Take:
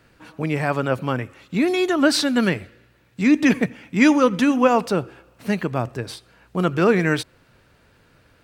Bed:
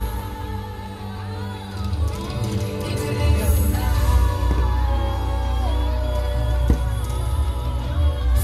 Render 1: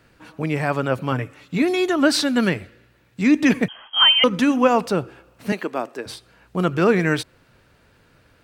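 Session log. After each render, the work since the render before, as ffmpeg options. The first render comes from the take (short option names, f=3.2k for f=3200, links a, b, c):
-filter_complex "[0:a]asettb=1/sr,asplit=3[a][b][c];[a]atrim=end=1.114[d];[b]atrim=start=1.11:end=1.62,asetpts=PTS-STARTPTS,afade=t=in:d=0.004:c=qsin,afade=t=out:st=0.506:d=0.004:c=qsin,aecho=1:1:6.8:0.54,atrim=end_sample=22491[e];[c]atrim=start=1.616[f];[d][e]acrossfade=d=0.004:c1=hsin:c2=qsin[g];[g][f]acrossfade=d=0.004:c1=qsin:c2=hsin,asettb=1/sr,asplit=3[h][i][j];[h]atrim=end=3.684[k];[i]atrim=start=3.68:end=4.24,asetpts=PTS-STARTPTS,afade=t=in:d=0.004:c=qsin,afade=t=out:st=0.556:d=0.004:c=qsin,lowpass=f=2.9k:t=q:w=0.5098,lowpass=f=2.9k:t=q:w=0.6013,lowpass=f=2.9k:t=q:w=0.9,lowpass=f=2.9k:t=q:w=2.563,afreqshift=-3400[l];[j]atrim=start=4.236[m];[k][l]acrossfade=d=0.004:c1=hsin:c2=qsin[n];[n][m]acrossfade=d=0.004:c1=qsin:c2=hsin,asettb=1/sr,asplit=3[o][p][q];[o]atrim=end=5.524[r];[p]atrim=start=5.52:end=6.06,asetpts=PTS-STARTPTS,afade=t=in:d=0.004:c=qsin,afade=t=out:st=0.536:d=0.004:c=qsin,highpass=f=260:w=0.5412,highpass=f=260:w=1.3066[s];[q]atrim=start=6.056[t];[r][s]acrossfade=d=0.004:c1=hsin:c2=qsin[u];[u][t]acrossfade=d=0.004:c1=qsin:c2=hsin"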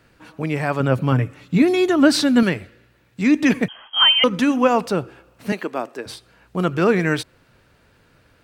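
-filter_complex "[0:a]asettb=1/sr,asplit=3[a][b][c];[a]atrim=end=0.804[d];[b]atrim=start=0.8:end=2.43,asetpts=PTS-STARTPTS,afade=t=in:d=0.004:c=qsin,afade=t=out:st=1.626:d=0.004:c=qsin,equalizer=f=130:t=o:w=2.5:g=8[e];[c]atrim=start=2.426[f];[d][e]acrossfade=d=0.004:c1=hsin:c2=qsin[g];[g][f]acrossfade=d=0.004:c1=qsin:c2=hsin"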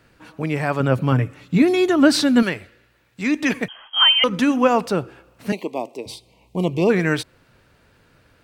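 -filter_complex "[0:a]asettb=1/sr,asplit=3[a][b][c];[a]atrim=end=2.424[d];[b]atrim=start=2.42:end=4.29,asetpts=PTS-STARTPTS,afade=t=in:d=0.004:c=qsin,afade=t=out:st=1.866:d=0.004:c=qsin,equalizer=f=160:w=0.42:g=-6.5[e];[c]atrim=start=4.286[f];[d][e]acrossfade=d=0.004:c1=hsin:c2=qsin[g];[g][f]acrossfade=d=0.004:c1=qsin:c2=hsin,asplit=3[h][i][j];[h]afade=t=out:st=5.51:d=0.02[k];[i]asuperstop=centerf=1500:order=8:qfactor=1.4,afade=t=in:st=5.51:d=0.02,afade=t=out:st=6.89:d=0.02[l];[j]afade=t=in:st=6.89:d=0.02[m];[k][l][m]amix=inputs=3:normalize=0"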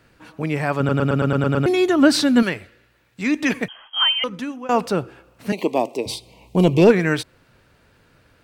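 -filter_complex "[0:a]asplit=3[a][b][c];[a]afade=t=out:st=5.57:d=0.02[d];[b]acontrast=76,afade=t=in:st=5.57:d=0.02,afade=t=out:st=6.9:d=0.02[e];[c]afade=t=in:st=6.9:d=0.02[f];[d][e][f]amix=inputs=3:normalize=0,asplit=10[g][h][i][j][k][l][m][n][o][p];[g]atrim=end=0.892[q];[h]atrim=start=0.778:end=0.892[r];[i]atrim=start=0.778:end=0.892[s];[j]atrim=start=0.778:end=0.892[t];[k]atrim=start=0.778:end=0.892[u];[l]atrim=start=0.778:end=0.892[v];[m]atrim=start=0.778:end=0.892[w];[n]atrim=start=0.778:end=0.892[x];[o]atrim=start=1.658:end=4.69,asetpts=PTS-STARTPTS,afade=t=out:st=1.972:d=1.06:silence=0.0944061[y];[p]atrim=start=4.69,asetpts=PTS-STARTPTS,afade=t=in:d=0.004:c=hsin:silence=0.0944061[z];[q][r]acrossfade=d=0.004:c1=hsin:c2=hsin[aa];[aa][s]acrossfade=d=0.004:c1=hsin:c2=hsin[ab];[ab][t]acrossfade=d=0.004:c1=hsin:c2=hsin[ac];[ac][u]acrossfade=d=0.004:c1=hsin:c2=hsin[ad];[ad][v]acrossfade=d=0.004:c1=hsin:c2=hsin[ae];[ae][w]acrossfade=d=0.004:c1=hsin:c2=hsin[af];[af][x]acrossfade=d=0.004:c1=hsin:c2=hsin[ag];[y][z]concat=n=2:v=0:a=1[ah];[ag][ah]acrossfade=d=0.004:c1=hsin:c2=hsin"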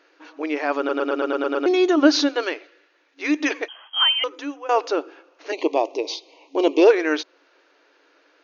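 -af "afftfilt=real='re*between(b*sr/4096,270,6800)':imag='im*between(b*sr/4096,270,6800)':win_size=4096:overlap=0.75,adynamicequalizer=threshold=0.01:dfrequency=1900:dqfactor=2.3:tfrequency=1900:tqfactor=2.3:attack=5:release=100:ratio=0.375:range=2:mode=cutabove:tftype=bell"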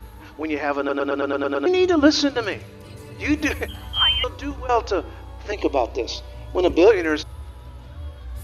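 -filter_complex "[1:a]volume=-15.5dB[a];[0:a][a]amix=inputs=2:normalize=0"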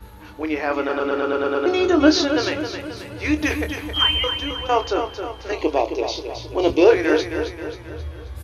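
-filter_complex "[0:a]asplit=2[a][b];[b]adelay=26,volume=-8.5dB[c];[a][c]amix=inputs=2:normalize=0,asplit=2[d][e];[e]aecho=0:1:267|534|801|1068|1335|1602:0.398|0.199|0.0995|0.0498|0.0249|0.0124[f];[d][f]amix=inputs=2:normalize=0"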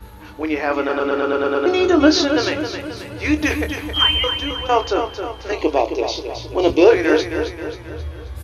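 -af "volume=2.5dB,alimiter=limit=-2dB:level=0:latency=1"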